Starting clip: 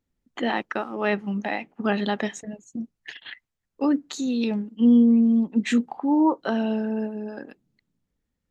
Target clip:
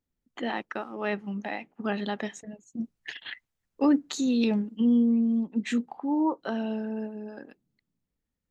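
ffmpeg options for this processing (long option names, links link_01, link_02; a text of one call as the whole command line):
ffmpeg -i in.wav -filter_complex "[0:a]asplit=3[link_01][link_02][link_03];[link_01]afade=type=out:start_time=2.78:duration=0.02[link_04];[link_02]acontrast=64,afade=type=in:start_time=2.78:duration=0.02,afade=type=out:start_time=4.81:duration=0.02[link_05];[link_03]afade=type=in:start_time=4.81:duration=0.02[link_06];[link_04][link_05][link_06]amix=inputs=3:normalize=0,volume=-6dB" out.wav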